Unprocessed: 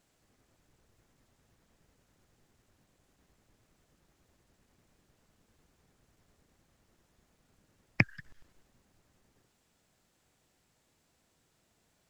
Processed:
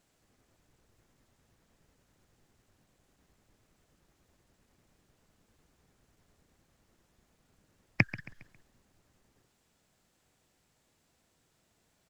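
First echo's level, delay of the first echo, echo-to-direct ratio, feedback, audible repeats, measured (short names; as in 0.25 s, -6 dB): -16.5 dB, 0.136 s, -15.5 dB, 41%, 3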